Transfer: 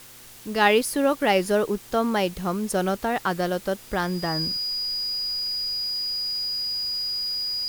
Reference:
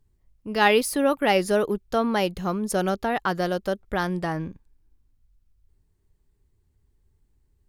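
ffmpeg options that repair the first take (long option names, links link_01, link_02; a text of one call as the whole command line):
ffmpeg -i in.wav -af "bandreject=frequency=121:width_type=h:width=4,bandreject=frequency=242:width_type=h:width=4,bandreject=frequency=363:width_type=h:width=4,bandreject=frequency=484:width_type=h:width=4,bandreject=frequency=4900:width=30,afwtdn=0.005,asetnsamples=nb_out_samples=441:pad=0,asendcmd='4.72 volume volume -7.5dB',volume=0dB" out.wav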